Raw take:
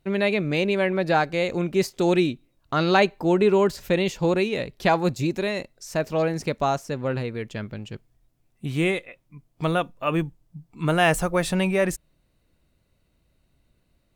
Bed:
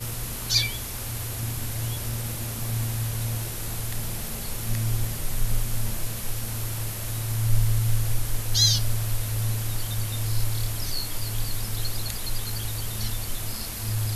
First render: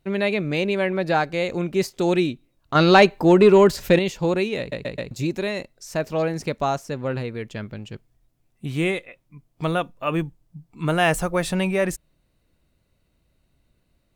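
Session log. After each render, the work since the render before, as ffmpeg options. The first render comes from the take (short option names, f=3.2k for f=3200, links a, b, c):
-filter_complex "[0:a]asettb=1/sr,asplit=3[a][b][c];[a]atrim=end=2.754[d];[b]atrim=start=2.75:end=3.99,asetpts=PTS-STARTPTS,afade=t=in:d=0.004:c=qsin,afade=t=out:st=1.236:d=0.004:c=qsin,acontrast=65[e];[c]atrim=start=3.986[f];[d][e]acrossfade=d=0.004:c1=hsin:c2=qsin[g];[g][f]acrossfade=d=0.004:c1=qsin:c2=hsin,asplit=5[h][i][j][k][l];[h]atrim=end=4.722[m];[i]atrim=start=4.588:end=4.722[n];[j]atrim=start=4.588:end=4.722[o];[k]atrim=start=4.588:end=4.722[p];[l]atrim=start=5.108[q];[m][n]acrossfade=d=0.004:c1=hsin:c2=hsin[r];[r][o]acrossfade=d=0.004:c1=hsin:c2=hsin[s];[s][p]acrossfade=d=0.004:c1=hsin:c2=hsin[t];[t][q]acrossfade=d=0.004:c1=hsin:c2=hsin"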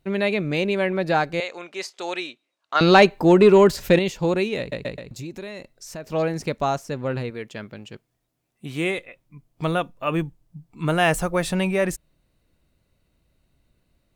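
-filter_complex "[0:a]asettb=1/sr,asplit=3[a][b][c];[a]atrim=end=1.404[d];[b]atrim=start=1.4:end=2.81,asetpts=PTS-STARTPTS,afade=t=in:d=0.004:c=qsin,afade=t=out:st=1.406:d=0.004:c=qsin,highpass=760,lowpass=7.4k[e];[c]atrim=start=2.806[f];[d][e]acrossfade=d=0.004:c1=hsin:c2=qsin[g];[g][f]acrossfade=d=0.004:c1=qsin:c2=hsin,asettb=1/sr,asplit=3[h][i][j];[h]atrim=end=4.984[k];[i]atrim=start=4.98:end=6.11,asetpts=PTS-STARTPTS,afade=t=in:d=0.004:c=qsin,afade=t=out:st=1.126:d=0.004:c=qsin,acompressor=threshold=-35dB:ratio=2.5:attack=3.2:release=140:knee=1:detection=peak[l];[j]atrim=start=6.106[m];[k][l]acrossfade=d=0.004:c1=hsin:c2=qsin[n];[n][m]acrossfade=d=0.004:c1=qsin:c2=hsin,asettb=1/sr,asplit=3[o][p][q];[o]atrim=end=7.304[r];[p]atrim=start=7.3:end=8.98,asetpts=PTS-STARTPTS,afade=t=in:d=0.004:c=qsin,afade=t=out:st=1.676:d=0.004:c=qsin,highpass=f=250:p=1[s];[q]atrim=start=8.976[t];[r][s]acrossfade=d=0.004:c1=hsin:c2=qsin[u];[u][t]acrossfade=d=0.004:c1=qsin:c2=hsin"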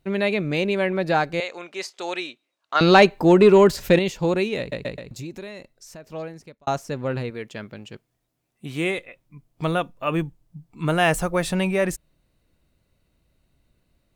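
-filter_complex "[0:a]asplit=2[a][b];[a]atrim=end=6.67,asetpts=PTS-STARTPTS,afade=t=out:st=5.24:d=1.43[c];[b]atrim=start=6.67,asetpts=PTS-STARTPTS,afade=t=in:d=0.004:c=hsin[d];[c][d]concat=n=2:v=0:a=1"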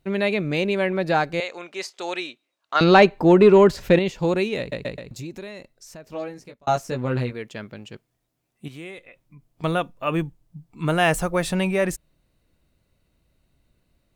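-filter_complex "[0:a]asettb=1/sr,asplit=3[a][b][c];[a]atrim=end=2.844[d];[b]atrim=start=2.84:end=4.18,asetpts=PTS-STARTPTS,afade=t=in:d=0.004:c=qsin,afade=t=out:st=1.336:d=0.004:c=qsin,aemphasis=mode=reproduction:type=cd[e];[c]atrim=start=4.176[f];[d][e]acrossfade=d=0.004:c1=hsin:c2=qsin[g];[g][f]acrossfade=d=0.004:c1=qsin:c2=hsin,asettb=1/sr,asplit=3[h][i][j];[h]atrim=end=6.114[k];[i]atrim=start=6.11:end=7.33,asetpts=PTS-STARTPTS,afade=t=in:d=0.004:c=qsin,afade=t=out:st=1.216:d=0.004:c=qsin,asplit=2[l][m];[m]adelay=16,volume=-3dB[n];[l][n]amix=inputs=2:normalize=0,atrim=end_sample=53802[o];[j]atrim=start=7.326[p];[k][o]acrossfade=d=0.004:c1=hsin:c2=qsin[q];[q][p]acrossfade=d=0.004:c1=qsin:c2=hsin,asettb=1/sr,asplit=3[r][s][t];[r]atrim=end=8.684[u];[s]atrim=start=8.68:end=9.64,asetpts=PTS-STARTPTS,afade=t=in:d=0.004:c=qsin,afade=t=out:st=0.956:d=0.004:c=qsin,acompressor=threshold=-45dB:ratio=2:attack=3.2:release=140:knee=1:detection=peak[v];[t]atrim=start=9.636[w];[u][v]acrossfade=d=0.004:c1=hsin:c2=qsin[x];[x][w]acrossfade=d=0.004:c1=qsin:c2=hsin"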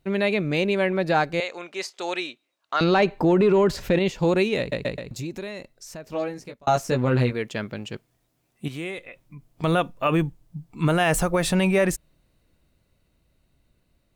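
-af "dynaudnorm=f=530:g=11:m=8dB,alimiter=limit=-11dB:level=0:latency=1:release=46"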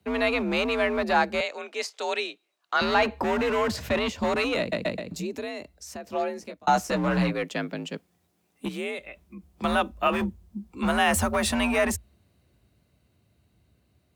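-filter_complex "[0:a]afreqshift=53,acrossover=split=220|530|5400[a][b][c][d];[b]aeval=exprs='0.0376*(abs(mod(val(0)/0.0376+3,4)-2)-1)':c=same[e];[a][e][c][d]amix=inputs=4:normalize=0"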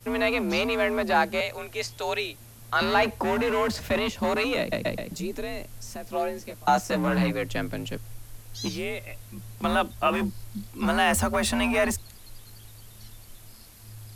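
-filter_complex "[1:a]volume=-17dB[a];[0:a][a]amix=inputs=2:normalize=0"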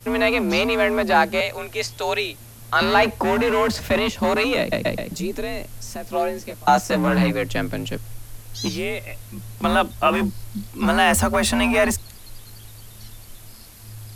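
-af "volume=5.5dB"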